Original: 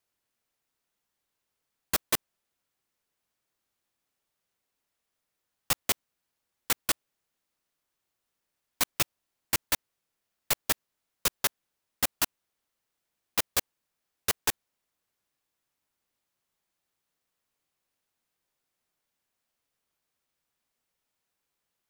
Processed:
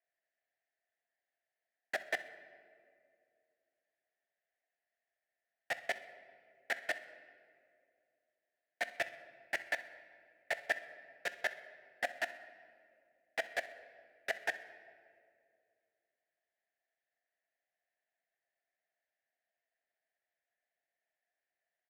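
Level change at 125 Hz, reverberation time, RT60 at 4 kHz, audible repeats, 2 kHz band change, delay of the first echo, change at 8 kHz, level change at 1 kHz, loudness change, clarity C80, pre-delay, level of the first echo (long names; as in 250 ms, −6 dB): below −20 dB, 2.3 s, 1.3 s, 1, 0.0 dB, 64 ms, −23.5 dB, −6.5 dB, −10.0 dB, 14.0 dB, 6 ms, −19.0 dB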